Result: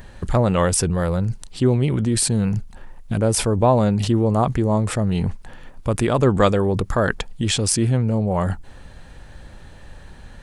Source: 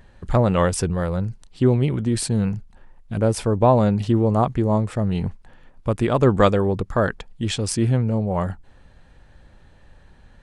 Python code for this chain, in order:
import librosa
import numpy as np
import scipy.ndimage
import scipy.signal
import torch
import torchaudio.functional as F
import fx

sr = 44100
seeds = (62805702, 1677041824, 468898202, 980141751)

p1 = fx.high_shelf(x, sr, hz=6200.0, db=8.5)
p2 = fx.over_compress(p1, sr, threshold_db=-29.0, ratio=-1.0)
p3 = p1 + (p2 * 10.0 ** (-2.0 / 20.0))
y = p3 * 10.0 ** (-1.0 / 20.0)